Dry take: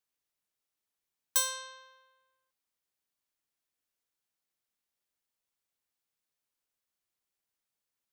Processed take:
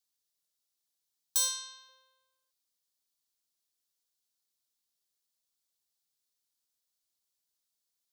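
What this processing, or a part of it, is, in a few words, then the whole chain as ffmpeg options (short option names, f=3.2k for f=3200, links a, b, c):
over-bright horn tweeter: -filter_complex "[0:a]highshelf=f=3.1k:t=q:w=1.5:g=8.5,alimiter=limit=-12dB:level=0:latency=1:release=53,asettb=1/sr,asplit=3[a][b][c];[a]atrim=end=1.484[d];[b]atrim=start=1.48:end=1.89,asetpts=PTS-STARTPTS,afade=t=in:d=0.004:c=qsin,afade=t=out:st=0.406:d=0.004:c=qsin,equalizer=f=500:w=4.3:g=-15[e];[c]atrim=start=1.886[f];[d][e]acrossfade=d=0.004:c1=hsin:c2=qsin[g];[g][f]acrossfade=d=0.004:c1=qsin:c2=hsin,volume=-4.5dB"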